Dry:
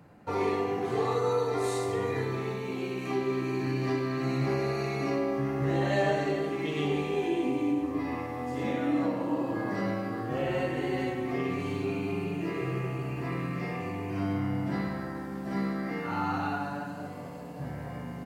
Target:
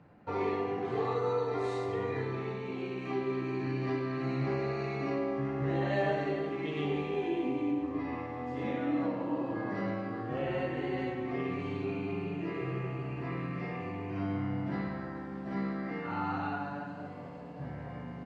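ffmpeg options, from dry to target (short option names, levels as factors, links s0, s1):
-af "lowpass=3600,volume=0.668"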